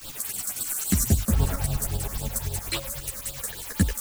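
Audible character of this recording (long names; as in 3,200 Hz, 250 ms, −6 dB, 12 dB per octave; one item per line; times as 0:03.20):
a quantiser's noise floor 6 bits, dither triangular
phaser sweep stages 8, 3.7 Hz, lowest notch 100–2,100 Hz
tremolo saw up 9.7 Hz, depth 70%
a shimmering, thickened sound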